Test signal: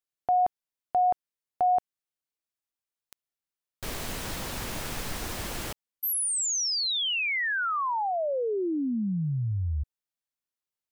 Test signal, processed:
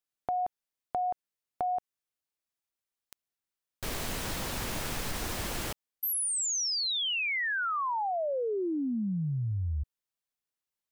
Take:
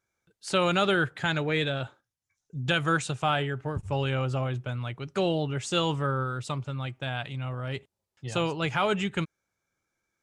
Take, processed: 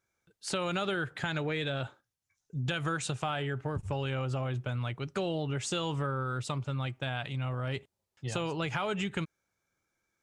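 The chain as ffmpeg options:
-af "acompressor=threshold=-29dB:ratio=6:attack=10:release=117:knee=1:detection=rms"

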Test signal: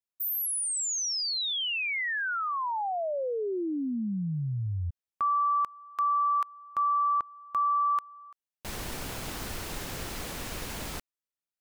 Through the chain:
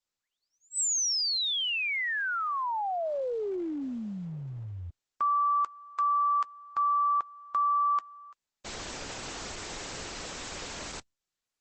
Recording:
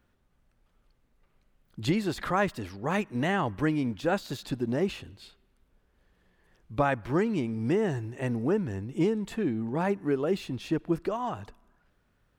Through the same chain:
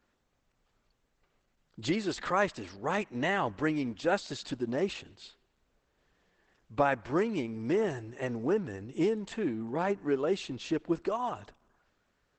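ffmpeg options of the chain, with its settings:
-af "bass=f=250:g=-8,treble=f=4k:g=3" -ar 48000 -c:a libopus -b:a 12k

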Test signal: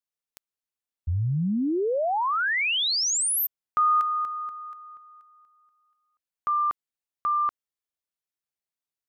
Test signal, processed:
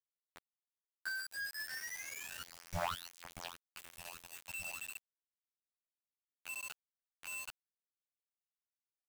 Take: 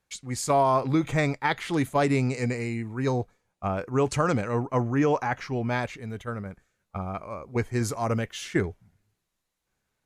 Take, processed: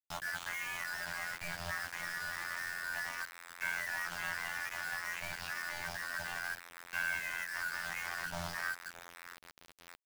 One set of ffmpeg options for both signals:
-filter_complex "[0:a]afftfilt=real='real(if(lt(b,272),68*(eq(floor(b/68),0)*2+eq(floor(b/68),1)*0+eq(floor(b/68),2)*3+eq(floor(b/68),3)*1)+mod(b,68),b),0)':imag='imag(if(lt(b,272),68*(eq(floor(b/68),0)*2+eq(floor(b/68),1)*0+eq(floor(b/68),2)*3+eq(floor(b/68),3)*1)+mod(b,68),b),0)':win_size=2048:overlap=0.75,bandreject=f=50:t=h:w=6,bandreject=f=100:t=h:w=6,bandreject=f=150:t=h:w=6,bandreject=f=200:t=h:w=6,bandreject=f=250:t=h:w=6,bandreject=f=300:t=h:w=6,bandreject=f=350:t=h:w=6,bandreject=f=400:t=h:w=6,bandreject=f=450:t=h:w=6,bandreject=f=500:t=h:w=6,areverse,acompressor=threshold=-34dB:ratio=16:attack=0.18:release=29:knee=6:detection=peak,areverse,aeval=exprs='0.0106*(abs(mod(val(0)/0.0106+3,4)-2)-1)':c=same,adynamicequalizer=threshold=0.00112:dfrequency=2200:dqfactor=0.89:tfrequency=2200:tqfactor=0.89:attack=5:release=100:ratio=0.417:range=2.5:mode=cutabove:tftype=bell,aecho=1:1:620|1240|1860|2480|3100|3720:0.224|0.121|0.0653|0.0353|0.019|0.0103,afftfilt=real='hypot(re,im)*cos(PI*b)':imag='0':win_size=2048:overlap=0.75,afftfilt=real='re*(1-between(b*sr/4096,180,530))':imag='im*(1-between(b*sr/4096,180,530))':win_size=4096:overlap=0.75,acrossover=split=280|1500[a][b][c];[b]acrusher=bits=4:mode=log:mix=0:aa=0.000001[d];[c]flanger=delay=3.2:depth=5.2:regen=-68:speed=0.34:shape=sinusoidal[e];[a][d][e]amix=inputs=3:normalize=0,lowpass=2.8k,acrusher=bits=9:mix=0:aa=0.000001,volume=15.5dB"

